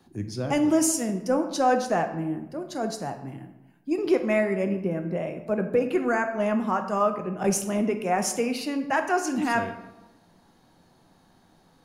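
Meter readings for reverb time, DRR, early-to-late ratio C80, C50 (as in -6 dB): 1.0 s, 6.0 dB, 11.5 dB, 9.0 dB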